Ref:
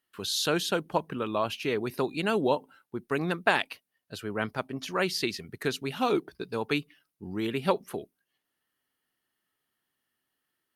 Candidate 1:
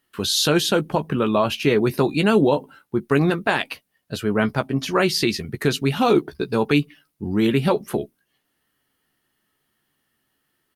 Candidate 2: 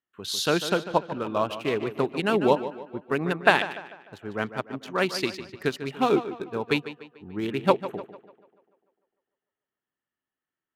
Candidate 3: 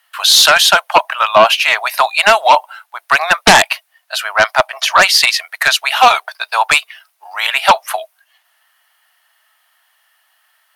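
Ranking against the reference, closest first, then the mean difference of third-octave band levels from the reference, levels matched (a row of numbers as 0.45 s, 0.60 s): 1, 2, 3; 2.0 dB, 6.0 dB, 11.5 dB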